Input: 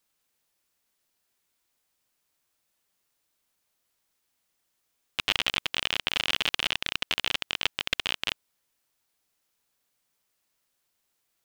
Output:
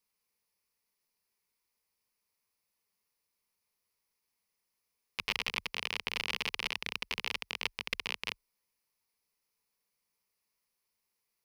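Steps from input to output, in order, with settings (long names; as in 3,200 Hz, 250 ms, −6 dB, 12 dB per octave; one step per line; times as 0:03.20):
EQ curve with evenly spaced ripples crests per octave 0.86, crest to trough 8 dB
level −7.5 dB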